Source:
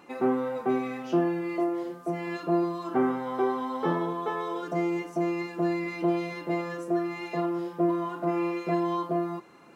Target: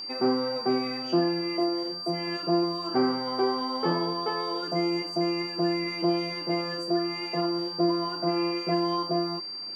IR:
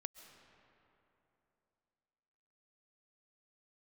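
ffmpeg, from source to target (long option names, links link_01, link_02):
-af "aeval=exprs='val(0)+0.0316*sin(2*PI*4700*n/s)':channel_layout=same,equalizer=frequency=4200:width_type=o:width=0.23:gain=-14,acontrast=71,volume=-6dB"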